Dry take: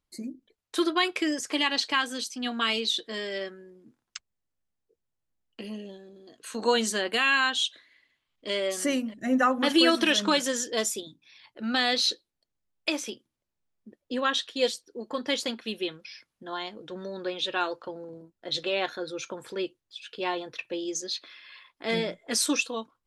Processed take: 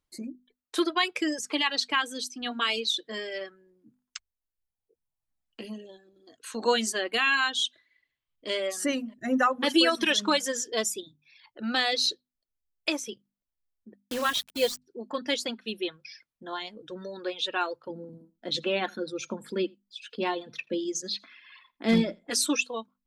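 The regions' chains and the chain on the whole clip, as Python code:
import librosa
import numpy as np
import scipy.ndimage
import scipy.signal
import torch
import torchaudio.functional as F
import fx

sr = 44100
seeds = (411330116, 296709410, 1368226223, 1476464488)

y = fx.chain(x, sr, fx.cvsd(bps=64000),
    fx.quant_dither(seeds[0], bits=6, dither='none'), at=(14.01, 14.82))
y = fx.chain(y, sr, fx.peak_eq(hz=220.0, db=14.0, octaves=0.75),
    fx.clip_hard(threshold_db=-14.0),
    fx.echo_single(ms=83, db=-18.0), at=(17.9, 22.3))
y = fx.dereverb_blind(y, sr, rt60_s=1.2)
y = fx.hum_notches(y, sr, base_hz=50, count=5)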